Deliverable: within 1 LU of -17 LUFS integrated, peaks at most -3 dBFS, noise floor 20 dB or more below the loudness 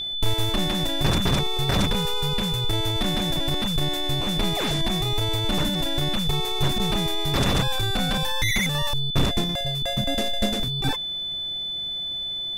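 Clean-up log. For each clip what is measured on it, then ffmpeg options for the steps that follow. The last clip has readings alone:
steady tone 3.5 kHz; tone level -27 dBFS; loudness -24.0 LUFS; peak level -8.5 dBFS; loudness target -17.0 LUFS
-> -af "bandreject=f=3500:w=30"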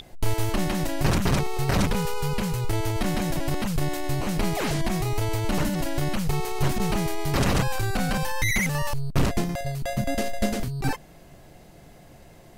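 steady tone not found; loudness -26.5 LUFS; peak level -9.5 dBFS; loudness target -17.0 LUFS
-> -af "volume=2.99,alimiter=limit=0.708:level=0:latency=1"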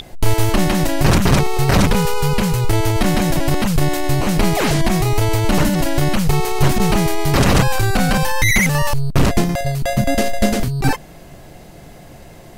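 loudness -17.5 LUFS; peak level -3.0 dBFS; noise floor -40 dBFS

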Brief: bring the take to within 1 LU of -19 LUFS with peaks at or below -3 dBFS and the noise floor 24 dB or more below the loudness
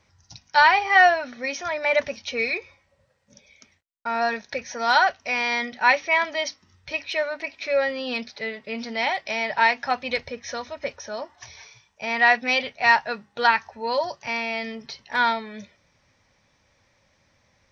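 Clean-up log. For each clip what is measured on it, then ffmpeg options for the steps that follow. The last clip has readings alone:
loudness -23.0 LUFS; peak level -4.0 dBFS; loudness target -19.0 LUFS
-> -af "volume=1.58,alimiter=limit=0.708:level=0:latency=1"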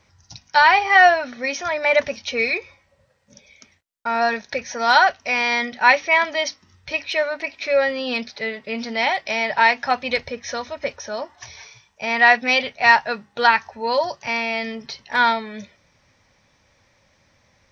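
loudness -19.5 LUFS; peak level -3.0 dBFS; noise floor -62 dBFS

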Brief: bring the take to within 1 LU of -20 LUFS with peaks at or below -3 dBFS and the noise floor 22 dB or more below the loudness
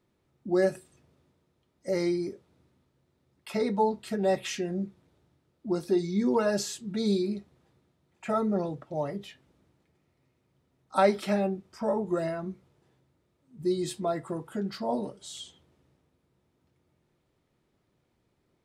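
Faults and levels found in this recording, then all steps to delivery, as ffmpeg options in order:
loudness -29.5 LUFS; peak level -11.0 dBFS; loudness target -20.0 LUFS
-> -af "volume=2.99,alimiter=limit=0.708:level=0:latency=1"

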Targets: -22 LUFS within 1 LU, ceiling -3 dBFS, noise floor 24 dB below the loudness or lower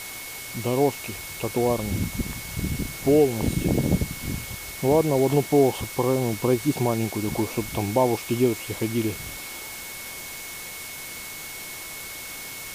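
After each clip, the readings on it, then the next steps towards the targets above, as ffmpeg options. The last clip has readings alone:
steady tone 2.2 kHz; tone level -40 dBFS; noise floor -37 dBFS; noise floor target -50 dBFS; loudness -25.5 LUFS; peak level -7.5 dBFS; loudness target -22.0 LUFS
-> -af "bandreject=f=2200:w=30"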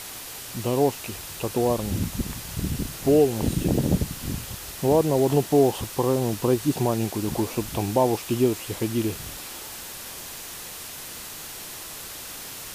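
steady tone not found; noise floor -38 dBFS; noise floor target -50 dBFS
-> -af "afftdn=nr=12:nf=-38"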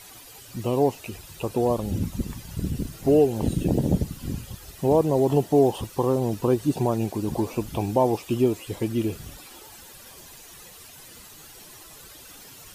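noise floor -46 dBFS; noise floor target -49 dBFS
-> -af "afftdn=nr=6:nf=-46"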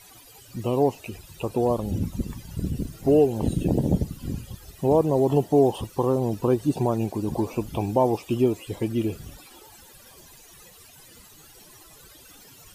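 noise floor -50 dBFS; loudness -24.5 LUFS; peak level -7.5 dBFS; loudness target -22.0 LUFS
-> -af "volume=1.33"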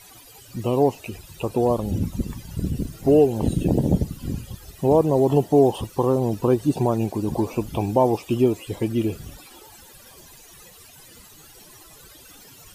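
loudness -22.0 LUFS; peak level -5.5 dBFS; noise floor -48 dBFS

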